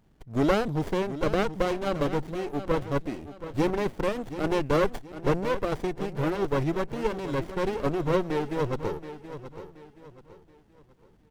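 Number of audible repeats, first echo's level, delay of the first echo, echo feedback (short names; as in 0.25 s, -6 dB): 3, -12.5 dB, 0.726 s, 35%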